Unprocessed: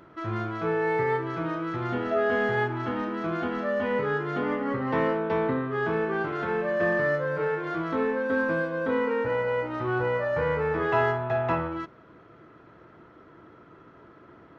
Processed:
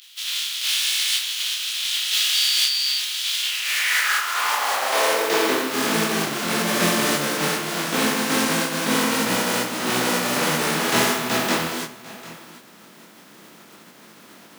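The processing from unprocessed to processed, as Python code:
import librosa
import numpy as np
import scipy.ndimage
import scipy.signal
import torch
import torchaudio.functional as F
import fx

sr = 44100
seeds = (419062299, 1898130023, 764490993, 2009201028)

p1 = fx.spec_flatten(x, sr, power=0.24)
p2 = fx.dmg_tone(p1, sr, hz=4600.0, level_db=-31.0, at=(2.33, 2.97), fade=0.02)
p3 = fx.filter_sweep_highpass(p2, sr, from_hz=3300.0, to_hz=200.0, start_s=3.38, end_s=6.0, q=2.8)
p4 = p3 + fx.echo_single(p3, sr, ms=746, db=-17.5, dry=0)
p5 = fx.detune_double(p4, sr, cents=52)
y = p5 * 10.0 ** (7.5 / 20.0)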